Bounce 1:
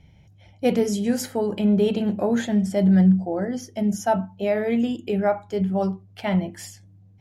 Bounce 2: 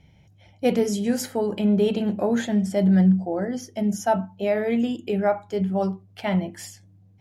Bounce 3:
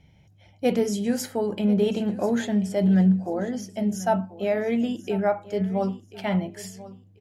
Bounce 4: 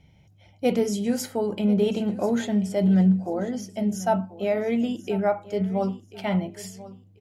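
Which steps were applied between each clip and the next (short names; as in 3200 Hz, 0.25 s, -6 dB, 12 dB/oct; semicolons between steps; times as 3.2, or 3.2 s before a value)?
low shelf 92 Hz -6 dB
feedback echo 1.039 s, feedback 22%, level -17 dB; gain -1.5 dB
notch 1700 Hz, Q 10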